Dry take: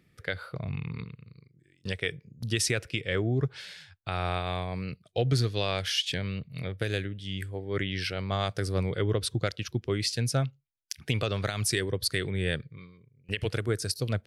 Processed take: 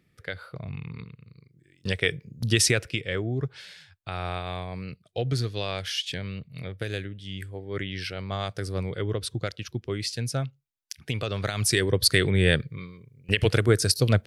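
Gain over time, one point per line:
1.05 s -2 dB
2.06 s +6.5 dB
2.64 s +6.5 dB
3.23 s -1.5 dB
11.19 s -1.5 dB
12.06 s +8.5 dB

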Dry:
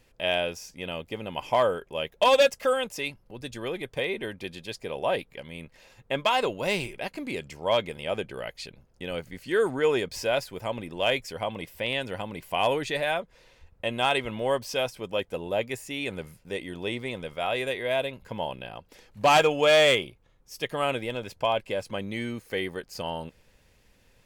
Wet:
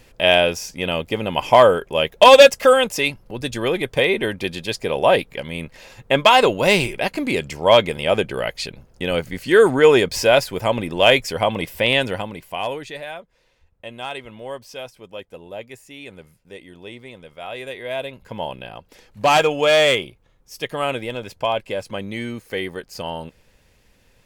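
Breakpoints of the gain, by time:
12.03 s +11.5 dB
12.45 s +1 dB
13.12 s -6 dB
17.26 s -6 dB
18.44 s +4 dB

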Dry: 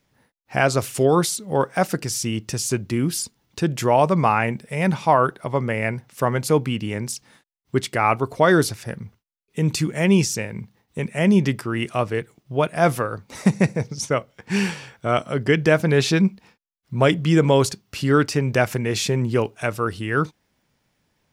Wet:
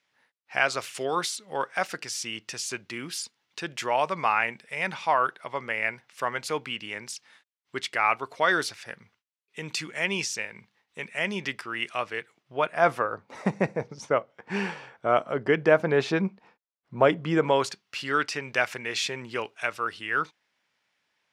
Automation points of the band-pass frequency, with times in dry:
band-pass, Q 0.74
12.17 s 2400 Hz
13.26 s 840 Hz
17.29 s 840 Hz
17.82 s 2300 Hz

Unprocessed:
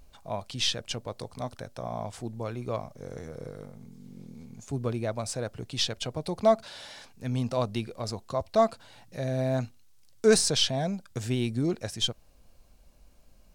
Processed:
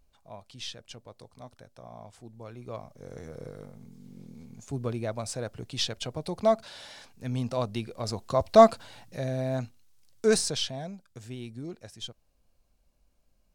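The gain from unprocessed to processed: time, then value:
2.24 s -11.5 dB
3.3 s -1.5 dB
7.84 s -1.5 dB
8.63 s +7.5 dB
9.41 s -2.5 dB
10.33 s -2.5 dB
11.09 s -11.5 dB

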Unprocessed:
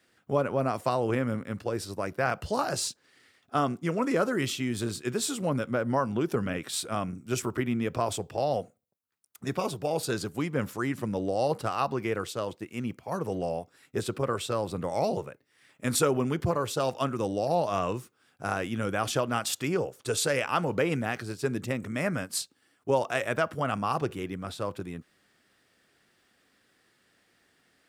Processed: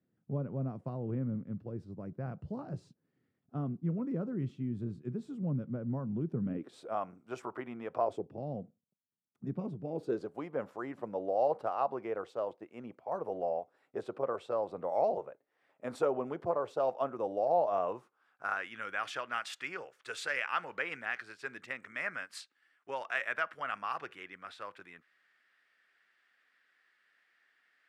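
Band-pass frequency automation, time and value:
band-pass, Q 1.8
6.4 s 160 Hz
7 s 820 Hz
7.95 s 820 Hz
8.39 s 190 Hz
9.81 s 190 Hz
10.35 s 670 Hz
17.85 s 670 Hz
18.68 s 1800 Hz

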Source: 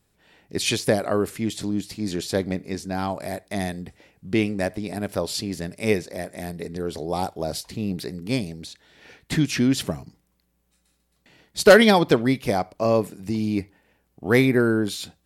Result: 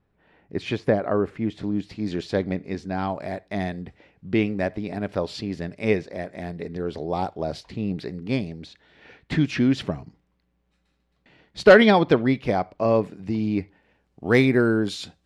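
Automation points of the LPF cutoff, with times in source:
1.48 s 1800 Hz
1.98 s 3200 Hz
13.55 s 3200 Hz
14.3 s 6000 Hz

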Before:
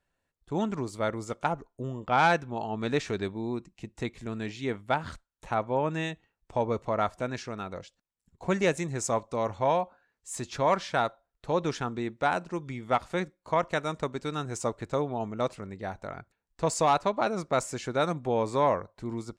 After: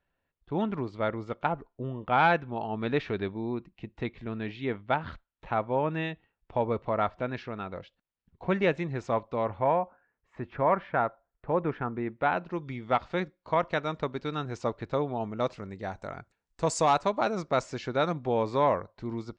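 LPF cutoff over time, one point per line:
LPF 24 dB/oct
9.35 s 3600 Hz
9.77 s 2100 Hz
11.95 s 2100 Hz
12.62 s 4600 Hz
15.18 s 4600 Hz
16.11 s 8700 Hz
16.84 s 8700 Hz
17.8 s 5100 Hz

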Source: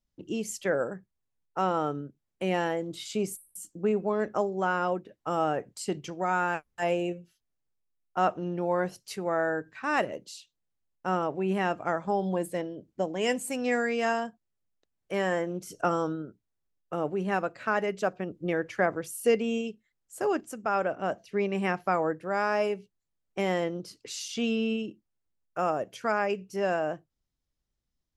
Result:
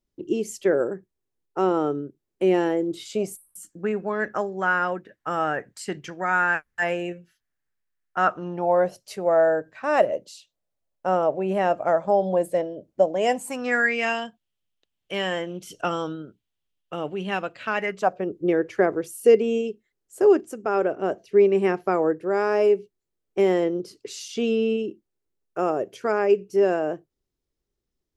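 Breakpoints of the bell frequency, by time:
bell +13.5 dB 0.7 oct
2.99 s 370 Hz
3.67 s 1700 Hz
8.2 s 1700 Hz
8.78 s 600 Hz
13.19 s 600 Hz
14.19 s 3100 Hz
17.73 s 3100 Hz
18.26 s 390 Hz

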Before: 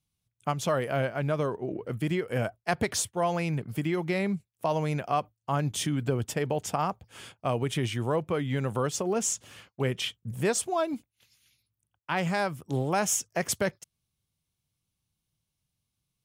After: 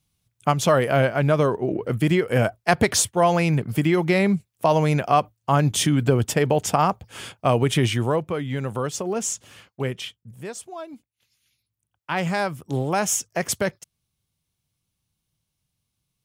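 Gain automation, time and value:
7.91 s +9 dB
8.34 s +2 dB
9.85 s +2 dB
10.34 s -8 dB
10.92 s -8 dB
12.19 s +4 dB

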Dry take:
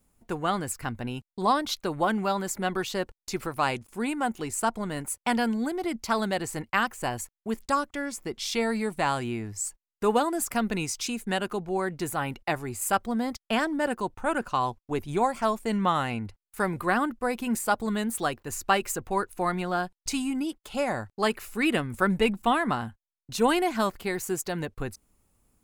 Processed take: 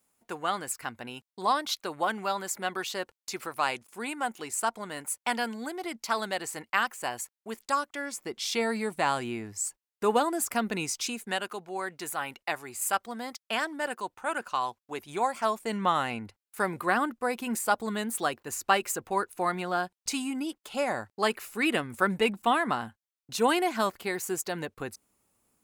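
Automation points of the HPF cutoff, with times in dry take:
HPF 6 dB/oct
7.84 s 710 Hz
8.53 s 260 Hz
11 s 260 Hz
11.49 s 950 Hz
14.94 s 950 Hz
15.88 s 310 Hz

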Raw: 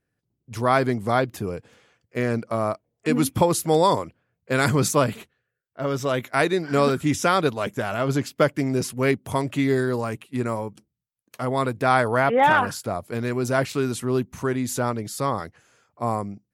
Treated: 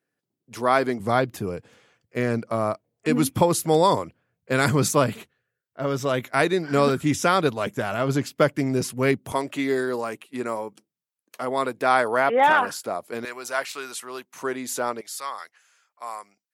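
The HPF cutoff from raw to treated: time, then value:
240 Hz
from 1 s 85 Hz
from 9.32 s 300 Hz
from 13.25 s 840 Hz
from 14.36 s 380 Hz
from 15.01 s 1300 Hz

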